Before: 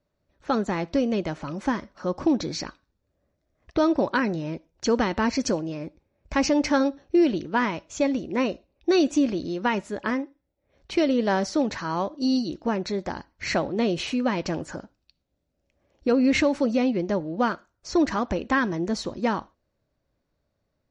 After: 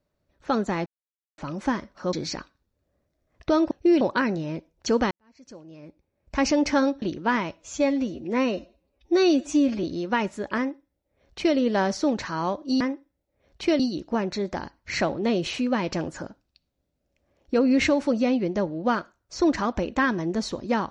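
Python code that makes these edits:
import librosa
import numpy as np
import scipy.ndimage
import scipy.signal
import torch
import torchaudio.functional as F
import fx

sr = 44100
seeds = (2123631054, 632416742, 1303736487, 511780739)

y = fx.edit(x, sr, fx.silence(start_s=0.86, length_s=0.52),
    fx.cut(start_s=2.13, length_s=0.28),
    fx.fade_in_span(start_s=5.09, length_s=1.33, curve='qua'),
    fx.move(start_s=7.0, length_s=0.3, to_s=3.99),
    fx.stretch_span(start_s=7.85, length_s=1.51, factor=1.5),
    fx.duplicate(start_s=10.1, length_s=0.99, to_s=12.33), tone=tone)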